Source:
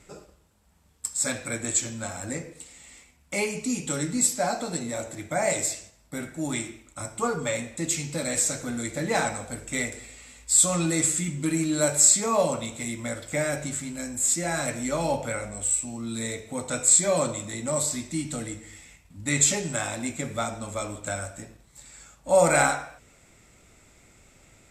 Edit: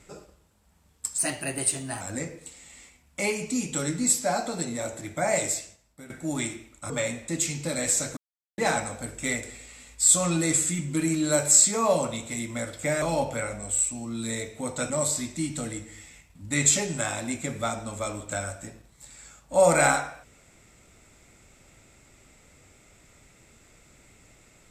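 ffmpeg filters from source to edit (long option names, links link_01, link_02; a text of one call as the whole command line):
ffmpeg -i in.wav -filter_complex "[0:a]asplit=9[link_01][link_02][link_03][link_04][link_05][link_06][link_07][link_08][link_09];[link_01]atrim=end=1.184[link_10];[link_02]atrim=start=1.18:end=2.15,asetpts=PTS-STARTPTS,asetrate=51597,aresample=44100[link_11];[link_03]atrim=start=2.146:end=6.24,asetpts=PTS-STARTPTS,afade=type=out:start_time=3.434:duration=0.66:silence=0.16788[link_12];[link_04]atrim=start=6.24:end=7.042,asetpts=PTS-STARTPTS,afade=type=in:duration=0.004:curve=hsin:silence=0.16788[link_13];[link_05]atrim=start=7.388:end=8.66,asetpts=PTS-STARTPTS,afade=type=out:start_time=1.268:duration=0.004:curve=hsin[link_14];[link_06]atrim=start=8.66:end=9.07,asetpts=PTS-STARTPTS,volume=0[link_15];[link_07]atrim=start=9.07:end=13.512,asetpts=PTS-STARTPTS,afade=type=in:duration=0.004:curve=hsin[link_16];[link_08]atrim=start=14.938:end=16.822[link_17];[link_09]atrim=start=17.648[link_18];[link_10][link_11]acrossfade=duration=0.004:curve1=hsin:curve2=hsin[link_19];[link_12][link_13]concat=n=2:v=0:a=1[link_20];[link_19][link_20]acrossfade=duration=0.004:curve1=hsin:curve2=hsin[link_21];[link_14][link_15][link_16]concat=n=3:v=0:a=1[link_22];[link_21][link_22]acrossfade=duration=0.004:curve1=hsin:curve2=hsin[link_23];[link_23][link_17]acrossfade=duration=0.004:curve1=hsin:curve2=hsin[link_24];[link_24][link_18]acrossfade=duration=0.004:curve1=hsin:curve2=hsin" out.wav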